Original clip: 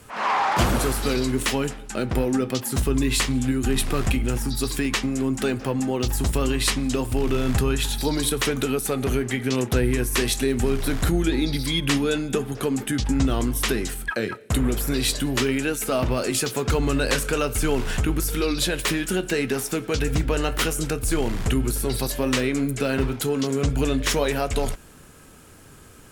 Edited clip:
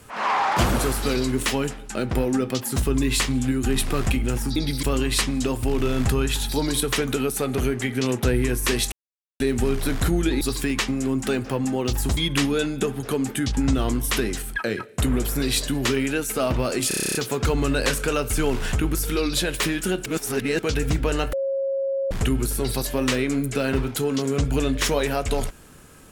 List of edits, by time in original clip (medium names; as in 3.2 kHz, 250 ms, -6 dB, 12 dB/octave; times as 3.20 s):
4.56–6.32 s: swap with 11.42–11.69 s
10.41 s: insert silence 0.48 s
16.40 s: stutter 0.03 s, 10 plays
19.31–19.84 s: reverse
20.58–21.36 s: bleep 544 Hz -21.5 dBFS